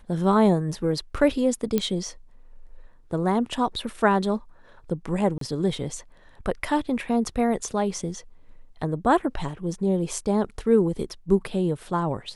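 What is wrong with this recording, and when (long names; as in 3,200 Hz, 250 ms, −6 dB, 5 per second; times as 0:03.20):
0:01.78: click −10 dBFS
0:05.38–0:05.41: drop-out 33 ms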